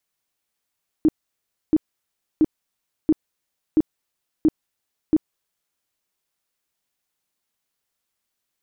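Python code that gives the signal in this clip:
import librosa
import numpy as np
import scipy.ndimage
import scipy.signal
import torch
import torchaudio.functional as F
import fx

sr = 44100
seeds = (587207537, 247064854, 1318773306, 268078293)

y = fx.tone_burst(sr, hz=312.0, cycles=11, every_s=0.68, bursts=7, level_db=-11.5)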